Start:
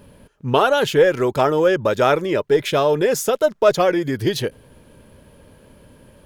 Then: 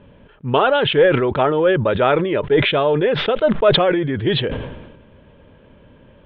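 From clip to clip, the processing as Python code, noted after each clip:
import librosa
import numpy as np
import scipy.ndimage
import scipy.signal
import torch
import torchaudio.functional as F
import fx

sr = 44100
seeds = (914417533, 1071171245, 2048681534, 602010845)

y = scipy.signal.sosfilt(scipy.signal.butter(12, 3600.0, 'lowpass', fs=sr, output='sos'), x)
y = fx.sustainer(y, sr, db_per_s=50.0)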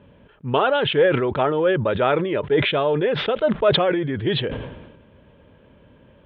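y = scipy.signal.sosfilt(scipy.signal.butter(2, 42.0, 'highpass', fs=sr, output='sos'), x)
y = y * 10.0 ** (-3.5 / 20.0)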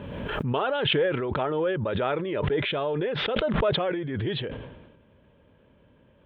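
y = fx.pre_swell(x, sr, db_per_s=27.0)
y = y * 10.0 ** (-8.0 / 20.0)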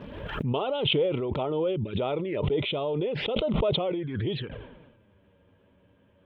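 y = fx.spec_box(x, sr, start_s=1.76, length_s=0.21, low_hz=450.0, high_hz=2100.0, gain_db=-12)
y = fx.env_flanger(y, sr, rest_ms=11.8, full_db=-24.5)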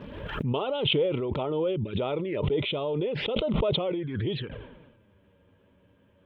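y = fx.peak_eq(x, sr, hz=720.0, db=-3.5, octaves=0.29)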